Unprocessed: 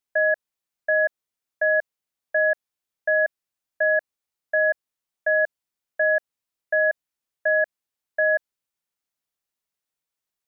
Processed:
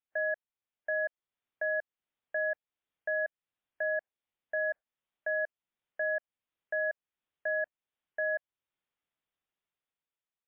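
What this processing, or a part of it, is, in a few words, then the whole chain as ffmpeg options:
low-bitrate web radio: -filter_complex "[0:a]asettb=1/sr,asplit=3[link_01][link_02][link_03];[link_01]atrim=end=3.834[link_04];[link_02]atrim=start=3.83:end=4.57,asetpts=PTS-STARTPTS,afade=type=in:duration=0.004:curve=qsin,afade=type=out:start_time=0.736:duration=0.004:curve=qsin,equalizer=frequency=1400:width=1.7:gain=-2.5[link_05];[link_03]atrim=start=4.566[link_06];[link_04][link_05]acrossfade=duration=0.004:curve1=hsin:curve2=qsin[link_07];[link_07][link_06]acrossfade=duration=0.004:curve1=qsin:curve2=hsin,dynaudnorm=framelen=270:gausssize=7:maxgain=8dB,alimiter=limit=-16.5dB:level=0:latency=1:release=379,volume=-7.5dB" -ar 8000 -c:a libmp3lame -b:a 32k

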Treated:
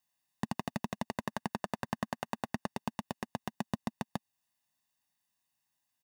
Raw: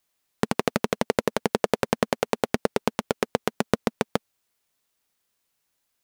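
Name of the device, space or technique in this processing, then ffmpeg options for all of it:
soft clipper into limiter: -filter_complex "[0:a]highpass=110,asoftclip=type=tanh:threshold=-6.5dB,alimiter=limit=-11dB:level=0:latency=1:release=280,lowshelf=frequency=220:gain=3.5,aecho=1:1:1.1:0.77,asettb=1/sr,asplit=3[link_01][link_02][link_03];[link_01]atrim=end=1.154[link_04];[link_02]atrim=start=1.15:end=2.71,asetpts=PTS-STARTPTS,afade=type=in:duration=0.004:curve=qsin,afade=type=out:start_time=1.556:duration=0.004:curve=qsin,equalizer=frequency=1400:width=1.9:gain=5.5[link_05];[link_03]atrim=start=2.706[link_06];[link_04][link_05]acrossfade=duration=0.004:curve1=hsin:curve2=qsin[link_07];[link_07][link_06]acrossfade=duration=0.004:curve1=qsin:curve2=hsin,volume=-9dB"

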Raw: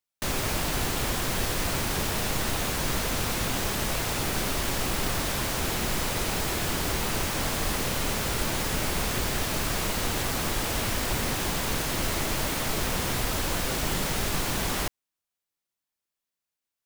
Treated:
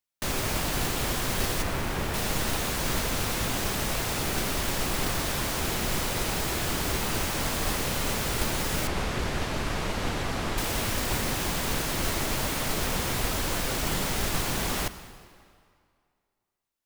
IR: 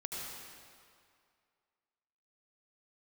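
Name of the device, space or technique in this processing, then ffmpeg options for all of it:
keyed gated reverb: -filter_complex "[0:a]asettb=1/sr,asplit=3[link_01][link_02][link_03];[link_01]atrim=end=1.624[link_04];[link_02]atrim=start=1.62:end=2.14,asetpts=PTS-STARTPTS,afade=type=in:duration=0.004:curve=qsin,afade=type=out:start_time=0.516:duration=0.004:curve=qsin,acrossover=split=2900[link_05][link_06];[link_06]acompressor=threshold=-38dB:ratio=4:attack=1:release=60[link_07];[link_05][link_07]amix=inputs=2:normalize=0[link_08];[link_03]atrim=start=2.136[link_09];[link_04][link_08]acrossfade=duration=0.004:curve1=hsin:curve2=qsin[link_10];[link_10][link_09]acrossfade=duration=0.004:curve1=qsin:curve2=hsin,asplit=3[link_11][link_12][link_13];[1:a]atrim=start_sample=2205[link_14];[link_12][link_14]afir=irnorm=-1:irlink=0[link_15];[link_13]apad=whole_len=743172[link_16];[link_15][link_16]sidechaingate=range=-9dB:threshold=-25dB:ratio=16:detection=peak,volume=-2.5dB[link_17];[link_11][link_17]amix=inputs=2:normalize=0,asettb=1/sr,asplit=3[link_18][link_19][link_20];[link_18]atrim=end=8.874[link_21];[link_19]atrim=start=8.87:end=10.58,asetpts=PTS-STARTPTS,afade=type=in:duration=0.004:curve=qsin,afade=type=out:start_time=1.706:duration=0.004:curve=qsin,aemphasis=mode=reproduction:type=50fm[link_22];[link_20]atrim=start=10.576[link_23];[link_21][link_22]acrossfade=duration=0.004:curve1=hsin:curve2=qsin[link_24];[link_24][link_23]acrossfade=duration=0.004:curve1=qsin:curve2=hsin,volume=-2dB"

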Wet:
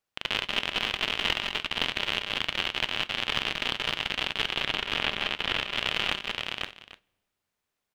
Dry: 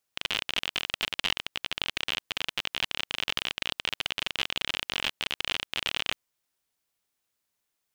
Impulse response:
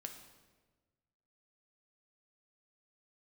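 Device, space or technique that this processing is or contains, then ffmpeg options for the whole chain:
keyed gated reverb: -filter_complex "[0:a]highshelf=frequency=4300:gain=-11,asplit=3[link_01][link_02][link_03];[1:a]atrim=start_sample=2205[link_04];[link_02][link_04]afir=irnorm=-1:irlink=0[link_05];[link_03]apad=whole_len=350494[link_06];[link_05][link_06]sidechaingate=range=-13dB:threshold=-38dB:ratio=16:detection=peak,volume=0.5dB[link_07];[link_01][link_07]amix=inputs=2:normalize=0,asettb=1/sr,asplit=3[link_08][link_09][link_10];[link_08]atrim=end=4.524[link_11];[link_09]atrim=start=4.52:end=5.57,asetpts=PTS-STARTPTS,afade=type=in:duration=0.004:curve=qsin,afade=type=out:start_time=1.046:duration=0.004:curve=qsin,acrossover=split=4600[link_12][link_13];[link_13]acompressor=threshold=-43dB:ratio=4:attack=1:release=60[link_14];[link_12][link_14]amix=inputs=2:normalize=0[link_15];[link_10]atrim=start=5.566[link_16];[link_11][link_15]acrossfade=duration=0.004:curve1=hsin:curve2=qsin[link_17];[link_17][link_16]acrossfade=duration=0.004:curve1=qsin:curve2=hsin,aecho=1:1:180|185|520|572|817:0.282|0.376|0.631|0.106|0.112"

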